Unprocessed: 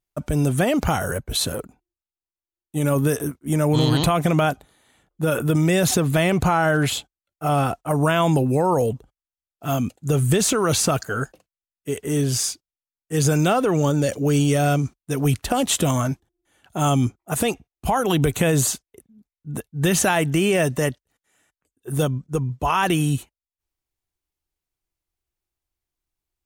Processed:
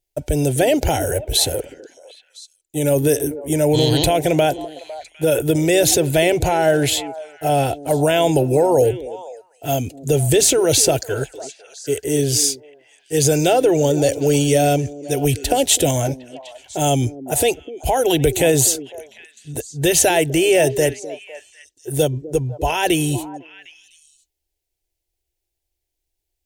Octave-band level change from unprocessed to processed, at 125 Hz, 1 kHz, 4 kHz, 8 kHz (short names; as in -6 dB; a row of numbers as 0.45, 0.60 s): -0.5, +1.5, +5.5, +7.0 dB